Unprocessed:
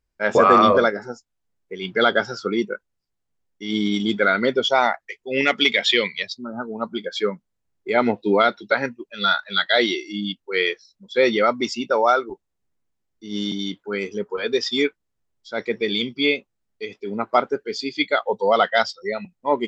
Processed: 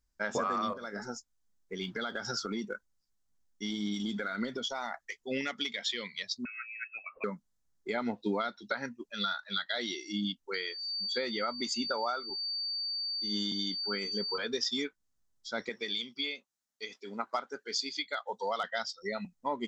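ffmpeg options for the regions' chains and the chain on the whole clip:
ffmpeg -i in.wav -filter_complex "[0:a]asettb=1/sr,asplit=3[link_01][link_02][link_03];[link_01]atrim=end=0.734[link_04];[link_02]atrim=start=0.73:end=5.14,asetpts=PTS-STARTPTS,afade=type=in:duration=0.004:curve=qsin,afade=type=out:start_time=4.406:duration=0.004:curve=qsin,acompressor=threshold=-25dB:ratio=10:attack=3.2:release=140:knee=1:detection=peak,aphaser=in_gain=1:out_gain=1:delay=4.8:decay=0.21:speed=1.9:type=sinusoidal[link_05];[link_03]atrim=start=5.136[link_06];[link_04][link_05]acrossfade=duration=0.004:curve1=hsin:curve2=qsin[link_07];[link_07][link_06]acrossfade=duration=0.004:curve1=qsin:curve2=hsin,asettb=1/sr,asplit=3[link_08][link_09][link_10];[link_08]atrim=end=6.454[link_11];[link_09]atrim=start=6.45:end=7.24,asetpts=PTS-STARTPTS,afade=type=in:duration=0.004:curve=qsin,afade=type=out:start_time=0.786:duration=0.004:curve=qsin,equalizer=frequency=920:width=0.34:gain=-9,lowpass=frequency=2400:width_type=q:width=0.5098,lowpass=frequency=2400:width_type=q:width=0.6013,lowpass=frequency=2400:width_type=q:width=0.9,lowpass=frequency=2400:width_type=q:width=2.563,afreqshift=-2800[link_12];[link_10]atrim=start=7.236[link_13];[link_11][link_12]acrossfade=duration=0.004:curve1=hsin:curve2=qsin[link_14];[link_14][link_13]acrossfade=duration=0.004:curve1=qsin:curve2=hsin,asettb=1/sr,asplit=3[link_15][link_16][link_17];[link_15]atrim=end=10.544[link_18];[link_16]atrim=start=10.54:end=14.38,asetpts=PTS-STARTPTS,afade=type=in:duration=0.004:curve=qsin,afade=type=out:start_time=3.836:duration=0.004:curve=qsin,asuperstop=centerf=5500:order=4:qfactor=6.6,lowshelf=frequency=150:gain=-8,aeval=exprs='val(0)+0.0224*sin(2*PI*4600*n/s)':channel_layout=same[link_19];[link_17]atrim=start=14.376[link_20];[link_18][link_19]acrossfade=duration=0.004:curve1=hsin:curve2=qsin[link_21];[link_21][link_20]acrossfade=duration=0.004:curve1=qsin:curve2=hsin,asettb=1/sr,asplit=3[link_22][link_23][link_24];[link_22]atrim=end=15.694[link_25];[link_23]atrim=start=15.69:end=18.64,asetpts=PTS-STARTPTS,afade=type=in:duration=0.004:curve=qsin,afade=type=out:start_time=2.946:duration=0.004:curve=qsin,highpass=frequency=750:poles=1,asoftclip=type=hard:threshold=-8.5dB[link_26];[link_24]atrim=start=18.636[link_27];[link_25][link_26]acrossfade=duration=0.004:curve1=hsin:curve2=qsin[link_28];[link_28][link_27]acrossfade=duration=0.004:curve1=qsin:curve2=hsin,equalizer=frequency=370:width=0.6:gain=-10,acompressor=threshold=-30dB:ratio=6,equalizer=frequency=100:width_type=o:width=0.67:gain=-6,equalizer=frequency=250:width_type=o:width=0.67:gain=6,equalizer=frequency=2500:width_type=o:width=0.67:gain=-8,equalizer=frequency=6300:width_type=o:width=0.67:gain=5" out.wav

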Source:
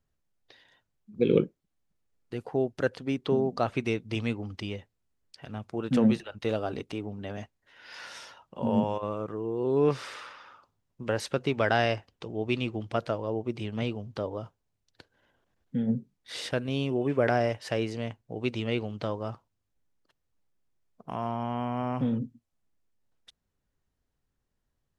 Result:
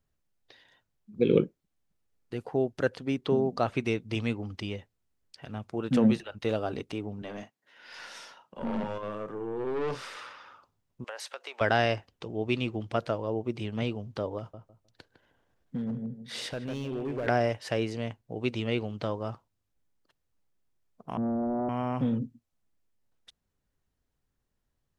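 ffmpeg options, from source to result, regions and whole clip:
ffmpeg -i in.wav -filter_complex "[0:a]asettb=1/sr,asplit=3[link_01][link_02][link_03];[link_01]atrim=end=7.224[link_04];[link_02]atrim=start=7.22:end=10.17,asetpts=PTS-STARTPTS,afade=type=in:duration=0.004:curve=qsin,afade=type=out:start_time=2.946:duration=0.004:curve=qsin,highpass=frequency=150:width=0.5412,highpass=frequency=150:width=1.3066,asplit=2[link_05][link_06];[link_06]adelay=39,volume=-10.5dB[link_07];[link_05][link_07]amix=inputs=2:normalize=0,atrim=end_sample=130095,aeval=exprs='(tanh(25.1*val(0)+0.4)-tanh(0.4))/25.1':channel_layout=same[link_08];[link_03]atrim=start=10.166[link_09];[link_04][link_08]acrossfade=duration=0.004:curve1=hsin:curve2=qsin[link_10];[link_10][link_09]acrossfade=duration=0.004:curve1=qsin:curve2=hsin,asettb=1/sr,asplit=3[link_11][link_12][link_13];[link_11]atrim=end=11.044[link_14];[link_12]atrim=start=11.04:end=11.61,asetpts=PTS-STARTPTS,afade=type=in:duration=0.004:curve=qsin,afade=type=out:start_time=0.566:duration=0.004:curve=qsin,highpass=frequency=610:width=0.5412,highpass=frequency=610:width=1.3066,acompressor=threshold=-36dB:ratio=4:attack=3.2:release=140:knee=1:detection=peak[link_15];[link_13]atrim=start=11.606[link_16];[link_14][link_15]acrossfade=duration=0.004:curve1=hsin:curve2=qsin[link_17];[link_17][link_16]acrossfade=duration=0.004:curve1=qsin:curve2=hsin,asettb=1/sr,asplit=3[link_18][link_19][link_20];[link_18]atrim=end=14.384[link_21];[link_19]atrim=start=14.38:end=17.27,asetpts=PTS-STARTPTS,afade=type=in:duration=0.004:curve=qsin,afade=type=out:start_time=2.886:duration=0.004:curve=qsin,asplit=2[link_22][link_23];[link_23]adelay=155,lowpass=frequency=1300:poles=1,volume=-7dB,asplit=2[link_24][link_25];[link_25]adelay=155,lowpass=frequency=1300:poles=1,volume=0.25,asplit=2[link_26][link_27];[link_27]adelay=155,lowpass=frequency=1300:poles=1,volume=0.25[link_28];[link_22][link_24][link_26][link_28]amix=inputs=4:normalize=0,atrim=end_sample=127449,acompressor=threshold=-32dB:ratio=2:attack=3.2:release=140:knee=1:detection=peak,asoftclip=type=hard:threshold=-28dB[link_29];[link_20]atrim=start=17.266[link_30];[link_21][link_29]acrossfade=duration=0.004:curve1=hsin:curve2=qsin[link_31];[link_31][link_30]acrossfade=duration=0.004:curve1=qsin:curve2=hsin,asettb=1/sr,asplit=3[link_32][link_33][link_34];[link_32]atrim=end=21.174[link_35];[link_33]atrim=start=21.17:end=21.69,asetpts=PTS-STARTPTS,afade=type=in:duration=0.004:curve=qsin,afade=type=out:start_time=0.516:duration=0.004:curve=qsin,asuperpass=centerf=190:order=4:qfactor=1.3,aeval=exprs='0.0473*sin(PI/2*3.55*val(0)/0.0473)':channel_layout=same[link_36];[link_34]atrim=start=21.686[link_37];[link_35][link_36]acrossfade=duration=0.004:curve1=hsin:curve2=qsin[link_38];[link_38][link_37]acrossfade=duration=0.004:curve1=qsin:curve2=hsin" out.wav

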